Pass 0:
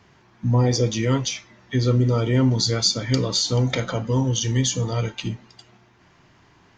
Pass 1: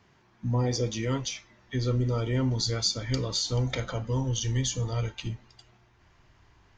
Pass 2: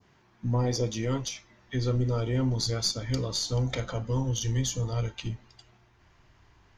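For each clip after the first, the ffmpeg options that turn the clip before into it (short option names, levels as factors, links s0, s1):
-af "asubboost=boost=7:cutoff=69,volume=0.447"
-af "aeval=exprs='0.224*(cos(1*acos(clip(val(0)/0.224,-1,1)))-cos(1*PI/2))+0.0141*(cos(4*acos(clip(val(0)/0.224,-1,1)))-cos(4*PI/2))':c=same,adynamicequalizer=threshold=0.00562:dfrequency=2300:dqfactor=0.73:tfrequency=2300:tqfactor=0.73:attack=5:release=100:ratio=0.375:range=2:mode=cutabove:tftype=bell"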